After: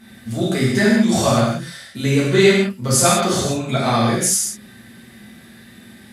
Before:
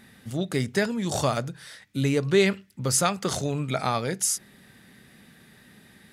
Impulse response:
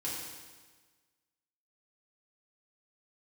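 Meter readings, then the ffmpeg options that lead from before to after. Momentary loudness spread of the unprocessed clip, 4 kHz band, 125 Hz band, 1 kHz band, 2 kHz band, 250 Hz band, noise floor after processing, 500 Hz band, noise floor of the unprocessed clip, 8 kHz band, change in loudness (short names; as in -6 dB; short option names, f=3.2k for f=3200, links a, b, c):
10 LU, +9.0 dB, +8.5 dB, +8.5 dB, +9.0 dB, +10.5 dB, -44 dBFS, +8.5 dB, -55 dBFS, +8.5 dB, +9.0 dB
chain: -filter_complex "[1:a]atrim=start_sample=2205,afade=t=out:st=0.19:d=0.01,atrim=end_sample=8820,asetrate=31752,aresample=44100[a];[0:a][a]afir=irnorm=-1:irlink=0,volume=4dB"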